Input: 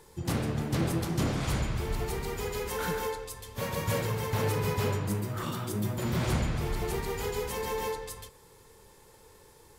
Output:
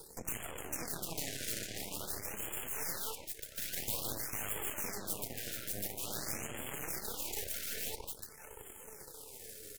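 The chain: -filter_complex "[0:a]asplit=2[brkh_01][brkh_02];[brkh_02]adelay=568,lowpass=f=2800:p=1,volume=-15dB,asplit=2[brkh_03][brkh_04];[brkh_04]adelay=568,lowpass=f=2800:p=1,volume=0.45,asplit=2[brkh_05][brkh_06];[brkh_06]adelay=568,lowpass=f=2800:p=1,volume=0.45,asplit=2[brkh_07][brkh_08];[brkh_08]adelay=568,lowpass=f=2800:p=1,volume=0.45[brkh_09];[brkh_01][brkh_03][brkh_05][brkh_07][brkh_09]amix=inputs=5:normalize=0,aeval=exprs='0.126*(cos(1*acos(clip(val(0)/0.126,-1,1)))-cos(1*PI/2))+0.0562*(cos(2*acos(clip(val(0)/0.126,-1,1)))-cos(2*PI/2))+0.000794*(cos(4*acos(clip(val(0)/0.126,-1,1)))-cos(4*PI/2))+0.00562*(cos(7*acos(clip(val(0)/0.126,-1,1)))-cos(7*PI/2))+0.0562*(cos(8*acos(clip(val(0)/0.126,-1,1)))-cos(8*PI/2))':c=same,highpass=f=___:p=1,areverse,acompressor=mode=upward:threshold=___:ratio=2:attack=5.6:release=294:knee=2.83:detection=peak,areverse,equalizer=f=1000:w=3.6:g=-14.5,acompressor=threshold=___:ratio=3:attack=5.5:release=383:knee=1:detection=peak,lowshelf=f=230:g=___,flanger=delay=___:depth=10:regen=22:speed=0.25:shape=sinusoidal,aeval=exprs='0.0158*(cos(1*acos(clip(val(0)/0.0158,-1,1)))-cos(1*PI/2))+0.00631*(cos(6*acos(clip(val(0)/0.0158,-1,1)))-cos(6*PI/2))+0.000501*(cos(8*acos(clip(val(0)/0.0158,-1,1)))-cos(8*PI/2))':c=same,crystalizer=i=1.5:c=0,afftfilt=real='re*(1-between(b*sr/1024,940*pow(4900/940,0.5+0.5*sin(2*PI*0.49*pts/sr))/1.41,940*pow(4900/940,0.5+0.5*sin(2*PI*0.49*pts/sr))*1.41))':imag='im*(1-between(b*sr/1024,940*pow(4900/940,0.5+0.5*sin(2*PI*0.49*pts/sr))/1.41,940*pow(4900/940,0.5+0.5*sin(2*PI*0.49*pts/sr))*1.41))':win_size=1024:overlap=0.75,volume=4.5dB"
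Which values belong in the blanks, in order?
87, -37dB, -48dB, -6.5, 0.2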